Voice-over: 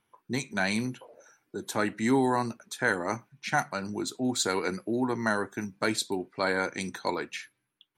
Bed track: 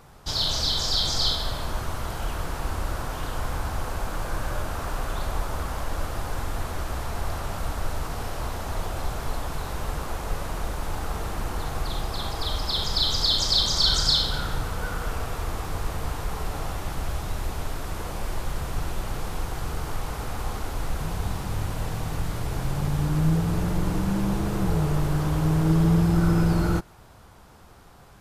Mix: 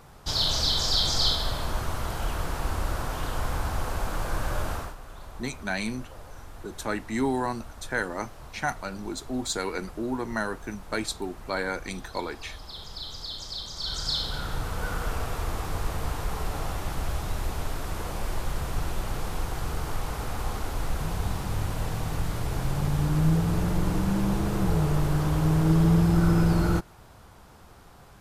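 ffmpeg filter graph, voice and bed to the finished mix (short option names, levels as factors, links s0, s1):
-filter_complex "[0:a]adelay=5100,volume=0.794[s0];[1:a]volume=5.01,afade=t=out:st=4.72:d=0.23:silence=0.188365,afade=t=in:st=13.75:d=1.16:silence=0.199526[s1];[s0][s1]amix=inputs=2:normalize=0"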